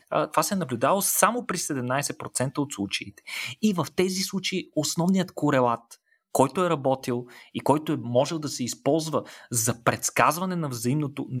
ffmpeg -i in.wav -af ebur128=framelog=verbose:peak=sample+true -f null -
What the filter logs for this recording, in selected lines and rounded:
Integrated loudness:
  I:         -25.6 LUFS
  Threshold: -35.7 LUFS
Loudness range:
  LRA:         2.2 LU
  Threshold: -46.0 LUFS
  LRA low:   -27.4 LUFS
  LRA high:  -25.2 LUFS
Sample peak:
  Peak:       -4.5 dBFS
True peak:
  Peak:       -4.5 dBFS